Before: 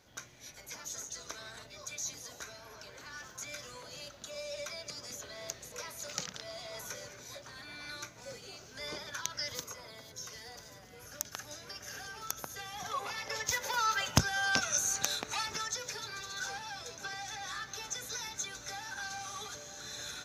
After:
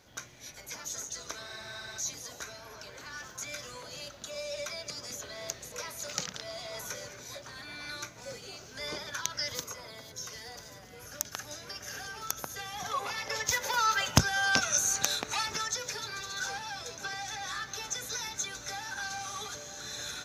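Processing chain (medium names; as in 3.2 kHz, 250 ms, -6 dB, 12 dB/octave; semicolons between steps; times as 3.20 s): spectral freeze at 1.48 s, 0.51 s; trim +3.5 dB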